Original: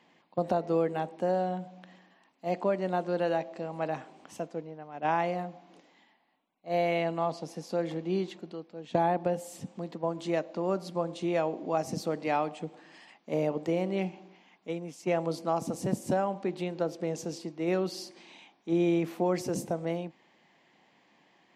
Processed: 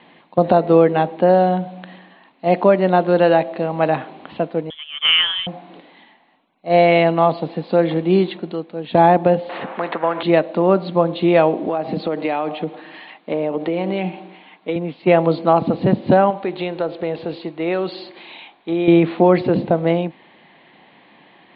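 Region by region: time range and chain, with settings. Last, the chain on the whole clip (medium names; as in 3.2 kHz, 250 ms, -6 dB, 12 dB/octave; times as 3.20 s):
4.70–5.47 s: high-pass 750 Hz + frequency inversion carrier 3.8 kHz
9.49–10.23 s: Butterworth band-pass 950 Hz, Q 0.75 + spectrum-flattening compressor 2:1
11.67–14.76 s: high-pass 200 Hz + comb 6.5 ms, depth 32% + compression 12:1, threshold -31 dBFS
16.30–18.88 s: peaking EQ 200 Hz -8 dB 1.6 oct + compression 2:1, threshold -34 dBFS
whole clip: steep low-pass 4.2 kHz 96 dB/octave; loudness maximiser +16 dB; trim -1 dB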